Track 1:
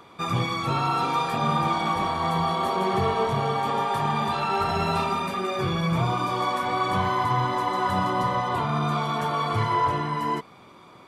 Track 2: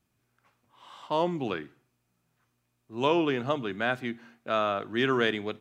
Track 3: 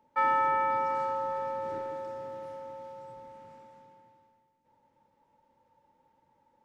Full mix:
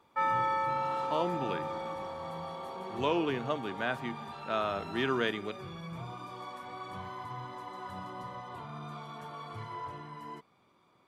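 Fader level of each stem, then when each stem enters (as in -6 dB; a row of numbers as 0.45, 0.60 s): -18.0, -5.0, -3.5 dB; 0.00, 0.00, 0.00 s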